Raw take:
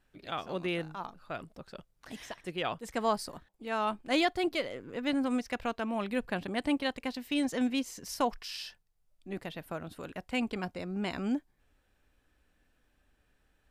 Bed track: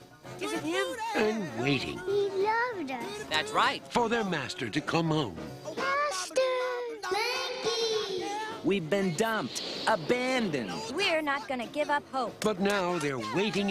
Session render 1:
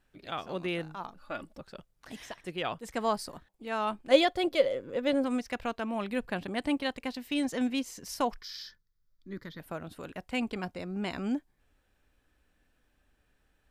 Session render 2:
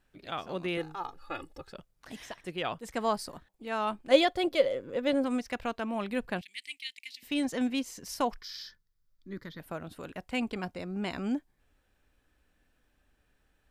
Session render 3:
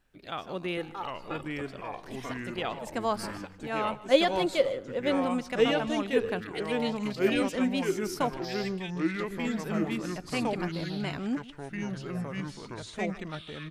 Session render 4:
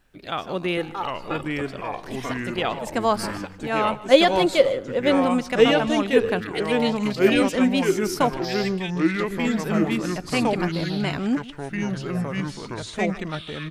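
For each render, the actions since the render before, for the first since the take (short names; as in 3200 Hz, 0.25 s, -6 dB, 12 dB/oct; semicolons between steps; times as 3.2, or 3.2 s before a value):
1.17–1.61 comb 3.5 ms; 4.11–5.24 small resonant body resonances 540/3400 Hz, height 14 dB; 8.41–9.6 fixed phaser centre 2700 Hz, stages 6
0.77–1.73 comb 2.4 ms, depth 82%; 6.41–7.23 elliptic high-pass 2100 Hz
echoes that change speed 0.693 s, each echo -3 st, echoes 3; echo 0.154 s -19 dB
gain +8 dB; limiter -2 dBFS, peak gain reduction 2 dB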